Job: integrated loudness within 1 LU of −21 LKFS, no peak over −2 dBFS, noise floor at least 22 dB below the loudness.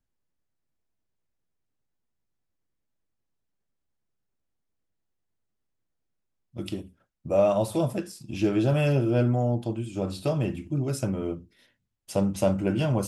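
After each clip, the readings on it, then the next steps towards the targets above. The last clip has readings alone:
integrated loudness −26.5 LKFS; sample peak −10.0 dBFS; target loudness −21.0 LKFS
→ level +5.5 dB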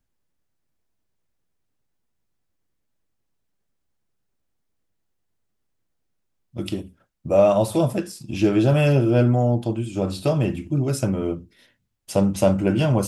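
integrated loudness −21.0 LKFS; sample peak −4.5 dBFS; background noise floor −74 dBFS

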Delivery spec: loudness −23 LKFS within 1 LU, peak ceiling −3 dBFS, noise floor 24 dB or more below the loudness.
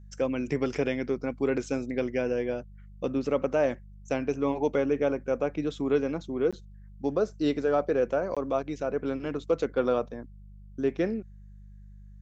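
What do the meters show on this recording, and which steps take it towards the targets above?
number of dropouts 2; longest dropout 16 ms; mains hum 50 Hz; hum harmonics up to 200 Hz; level of the hum −45 dBFS; integrated loudness −29.0 LKFS; sample peak −13.0 dBFS; target loudness −23.0 LKFS
→ repair the gap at 0:06.51/0:08.35, 16 ms
hum removal 50 Hz, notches 4
level +6 dB

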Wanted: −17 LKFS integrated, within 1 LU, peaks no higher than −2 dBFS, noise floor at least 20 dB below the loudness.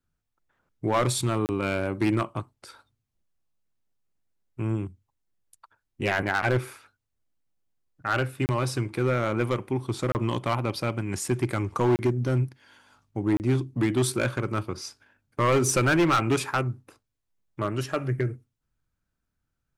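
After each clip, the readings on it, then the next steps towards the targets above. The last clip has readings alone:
share of clipped samples 1.1%; peaks flattened at −17.0 dBFS; number of dropouts 5; longest dropout 29 ms; integrated loudness −26.5 LKFS; sample peak −17.0 dBFS; target loudness −17.0 LKFS
→ clipped peaks rebuilt −17 dBFS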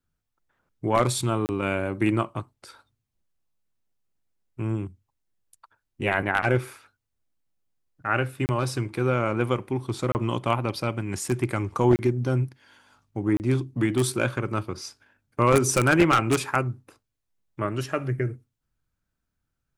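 share of clipped samples 0.0%; number of dropouts 5; longest dropout 29 ms
→ repair the gap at 0:01.46/0:08.46/0:10.12/0:11.96/0:13.37, 29 ms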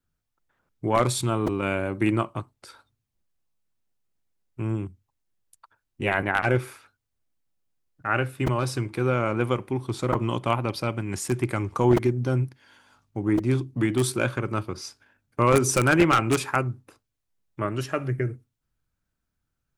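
number of dropouts 0; integrated loudness −25.5 LKFS; sample peak −8.0 dBFS; target loudness −17.0 LKFS
→ level +8.5 dB
brickwall limiter −2 dBFS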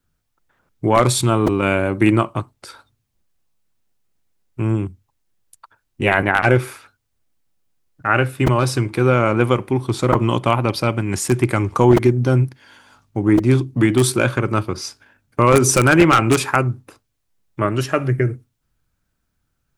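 integrated loudness −17.5 LKFS; sample peak −2.0 dBFS; background noise floor −72 dBFS

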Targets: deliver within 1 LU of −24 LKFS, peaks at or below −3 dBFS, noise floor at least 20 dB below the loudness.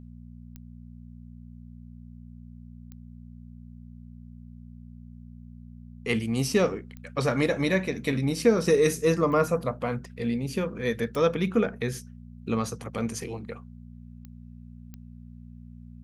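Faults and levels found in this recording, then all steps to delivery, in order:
number of clicks 7; mains hum 60 Hz; hum harmonics up to 240 Hz; level of the hum −43 dBFS; integrated loudness −27.0 LKFS; sample peak −9.0 dBFS; target loudness −24.0 LKFS
→ click removal
hum removal 60 Hz, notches 4
level +3 dB

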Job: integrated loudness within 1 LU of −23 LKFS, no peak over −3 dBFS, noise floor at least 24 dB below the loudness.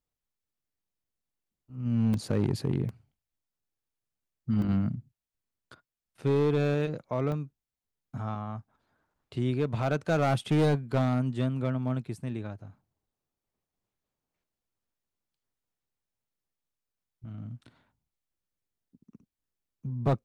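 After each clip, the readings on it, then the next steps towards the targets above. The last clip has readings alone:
share of clipped samples 0.9%; peaks flattened at −19.5 dBFS; number of dropouts 4; longest dropout 1.9 ms; integrated loudness −29.5 LKFS; sample peak −19.5 dBFS; target loudness −23.0 LKFS
→ clipped peaks rebuilt −19.5 dBFS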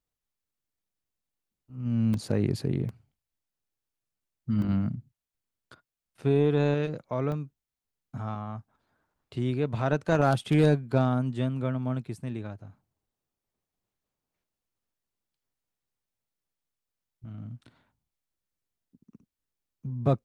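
share of clipped samples 0.0%; number of dropouts 4; longest dropout 1.9 ms
→ repair the gap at 0:02.14/0:02.89/0:04.62/0:07.32, 1.9 ms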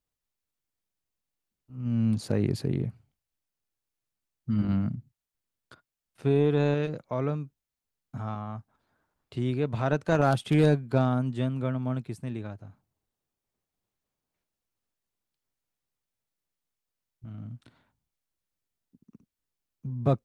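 number of dropouts 0; integrated loudness −28.0 LKFS; sample peak −10.5 dBFS; target loudness −23.0 LKFS
→ level +5 dB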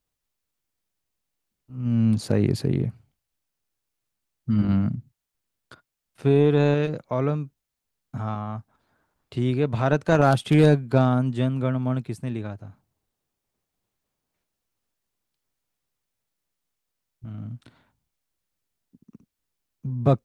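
integrated loudness −23.0 LKFS; sample peak −5.5 dBFS; background noise floor −83 dBFS

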